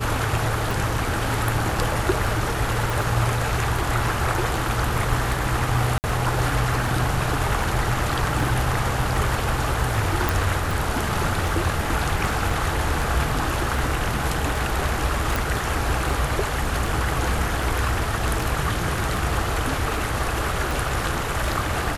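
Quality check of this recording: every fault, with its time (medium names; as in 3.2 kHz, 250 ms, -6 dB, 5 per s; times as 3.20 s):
tick 78 rpm
2.90 s: pop
5.98–6.04 s: dropout 59 ms
10.29 s: pop
12.50 s: dropout 2.2 ms
15.36 s: pop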